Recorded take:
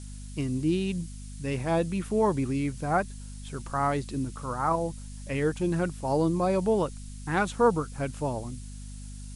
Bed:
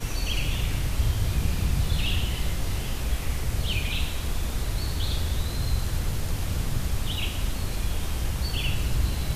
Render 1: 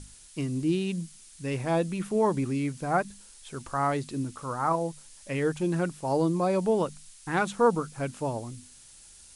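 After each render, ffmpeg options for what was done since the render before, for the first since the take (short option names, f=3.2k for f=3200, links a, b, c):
-af "bandreject=f=50:t=h:w=6,bandreject=f=100:t=h:w=6,bandreject=f=150:t=h:w=6,bandreject=f=200:t=h:w=6,bandreject=f=250:t=h:w=6"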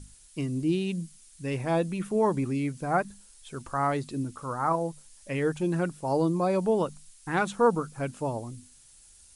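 -af "afftdn=nr=6:nf=-52"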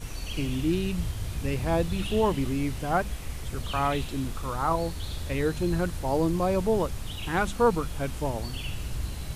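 -filter_complex "[1:a]volume=-7.5dB[a];[0:a][a]amix=inputs=2:normalize=0"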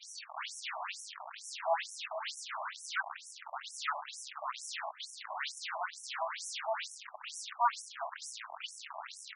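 -filter_complex "[0:a]acrossover=split=800|1600[a][b][c];[a]acrusher=bits=4:mix=0:aa=0.000001[d];[d][b][c]amix=inputs=3:normalize=0,afftfilt=real='re*between(b*sr/1024,820*pow(7800/820,0.5+0.5*sin(2*PI*2.2*pts/sr))/1.41,820*pow(7800/820,0.5+0.5*sin(2*PI*2.2*pts/sr))*1.41)':imag='im*between(b*sr/1024,820*pow(7800/820,0.5+0.5*sin(2*PI*2.2*pts/sr))/1.41,820*pow(7800/820,0.5+0.5*sin(2*PI*2.2*pts/sr))*1.41)':win_size=1024:overlap=0.75"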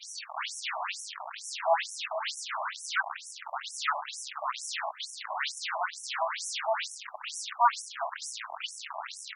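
-af "volume=6dB"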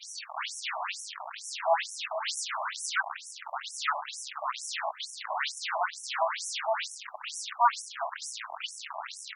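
-filter_complex "[0:a]asettb=1/sr,asplit=3[a][b][c];[a]atrim=end=2.284[d];[b]atrim=start=2.28:end=2.9,asetpts=PTS-STARTPTS,afade=t=in:d=0.004:c=qsin,afade=t=out:st=0.616:d=0.004:c=qsin,highshelf=f=5.3k:g=8[e];[c]atrim=start=2.896[f];[d][e]acrossfade=d=0.004:c1=hsin:c2=qsin[g];[g][f]acrossfade=d=0.004:c1=qsin:c2=hsin,asplit=3[h][i][j];[h]afade=t=out:st=4.84:d=0.02[k];[i]lowshelf=f=490:g=9.5,afade=t=in:st=4.84:d=0.02,afade=t=out:st=6.56:d=0.02[l];[j]afade=t=in:st=6.56:d=0.02[m];[k][l][m]amix=inputs=3:normalize=0"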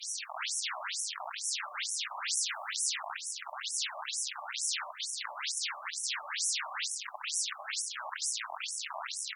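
-af "aemphasis=mode=production:type=cd,afftfilt=real='re*lt(hypot(re,im),0.0891)':imag='im*lt(hypot(re,im),0.0891)':win_size=1024:overlap=0.75"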